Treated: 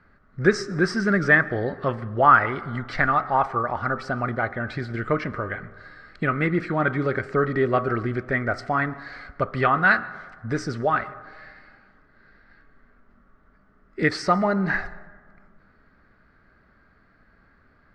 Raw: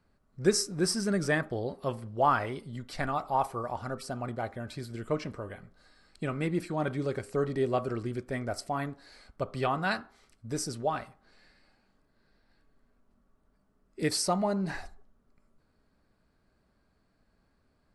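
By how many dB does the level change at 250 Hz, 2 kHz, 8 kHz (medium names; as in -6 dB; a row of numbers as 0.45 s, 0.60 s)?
+7.0 dB, +15.0 dB, no reading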